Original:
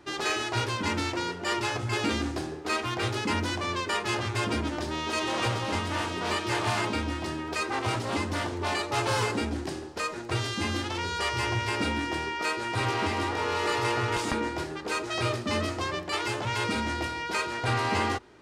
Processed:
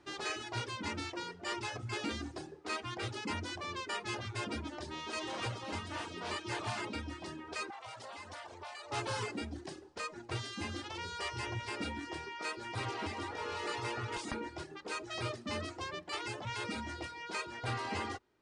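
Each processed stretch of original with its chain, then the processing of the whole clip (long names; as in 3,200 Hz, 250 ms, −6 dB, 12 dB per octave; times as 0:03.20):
0:07.70–0:08.92: low shelf with overshoot 450 Hz −10.5 dB, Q 1.5 + downward compressor 8 to 1, threshold −32 dBFS
whole clip: reverb reduction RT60 0.84 s; elliptic low-pass filter 9,600 Hz, stop band 40 dB; level −8 dB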